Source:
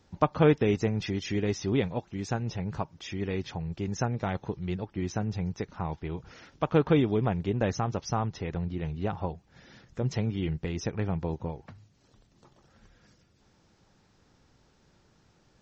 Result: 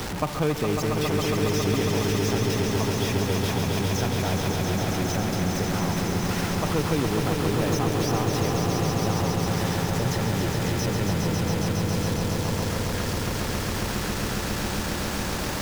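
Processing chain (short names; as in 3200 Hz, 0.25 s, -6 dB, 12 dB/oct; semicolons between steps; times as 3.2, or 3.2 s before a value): zero-crossing step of -24.5 dBFS; swelling echo 0.137 s, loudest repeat 5, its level -6 dB; three-band squash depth 40%; gain -4.5 dB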